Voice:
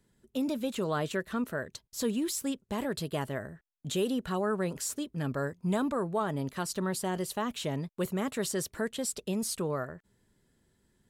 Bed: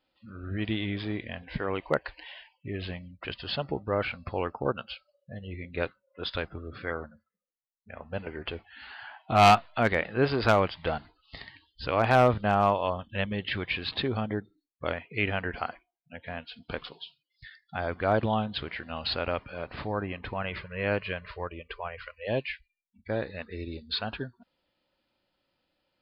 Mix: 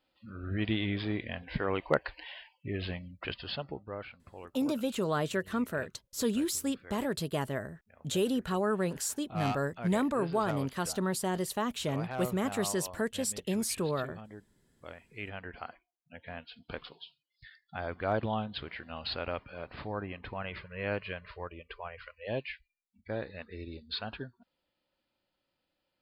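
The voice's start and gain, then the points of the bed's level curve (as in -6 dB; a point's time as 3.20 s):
4.20 s, +0.5 dB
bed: 3.27 s -0.5 dB
4.21 s -17 dB
14.75 s -17 dB
16.14 s -5.5 dB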